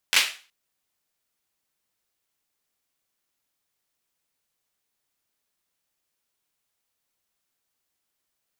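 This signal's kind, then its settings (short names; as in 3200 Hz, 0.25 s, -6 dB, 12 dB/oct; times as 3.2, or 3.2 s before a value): hand clap length 0.37 s, apart 11 ms, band 2600 Hz, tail 0.37 s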